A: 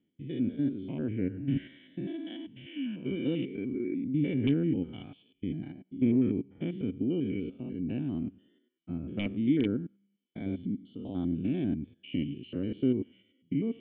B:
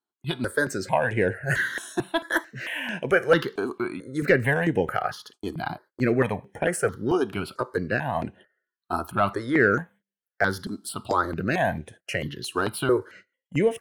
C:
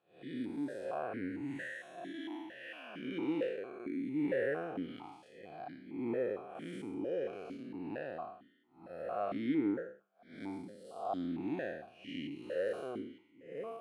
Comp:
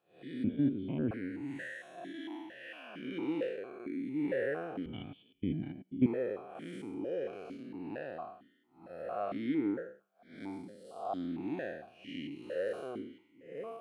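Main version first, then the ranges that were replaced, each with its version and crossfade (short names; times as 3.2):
C
0.44–1.11 from A
4.86–6.06 from A
not used: B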